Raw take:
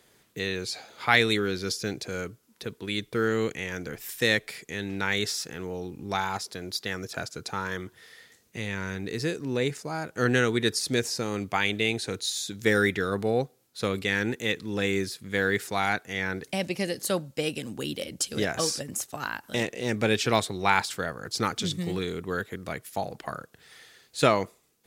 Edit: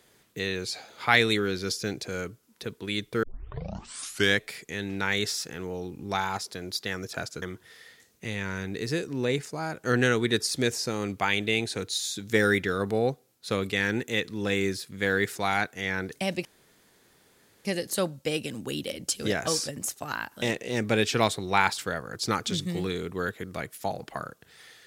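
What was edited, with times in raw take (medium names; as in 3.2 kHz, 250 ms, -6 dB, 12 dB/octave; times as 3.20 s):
3.23 s: tape start 1.18 s
7.42–7.74 s: delete
16.77 s: insert room tone 1.20 s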